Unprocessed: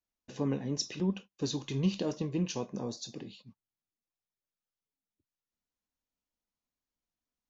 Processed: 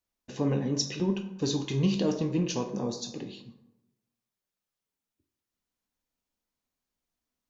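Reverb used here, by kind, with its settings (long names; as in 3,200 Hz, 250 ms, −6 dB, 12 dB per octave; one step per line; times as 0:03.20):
dense smooth reverb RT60 0.98 s, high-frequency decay 0.5×, DRR 6.5 dB
level +4 dB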